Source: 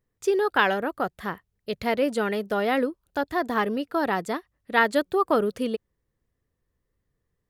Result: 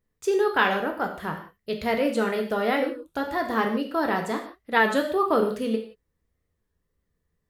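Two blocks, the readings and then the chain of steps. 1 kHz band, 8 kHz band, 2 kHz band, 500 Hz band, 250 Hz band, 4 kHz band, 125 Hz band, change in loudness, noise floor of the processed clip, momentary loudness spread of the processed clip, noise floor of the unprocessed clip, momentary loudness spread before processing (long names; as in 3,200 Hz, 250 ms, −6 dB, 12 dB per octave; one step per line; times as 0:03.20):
0.0 dB, +0.5 dB, +0.5 dB, +0.5 dB, +0.5 dB, +0.5 dB, +1.5 dB, +0.5 dB, −78 dBFS, 10 LU, −79 dBFS, 11 LU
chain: reverb whose tail is shaped and stops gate 200 ms falling, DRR 2.5 dB
wow of a warped record 33 1/3 rpm, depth 100 cents
level −1.5 dB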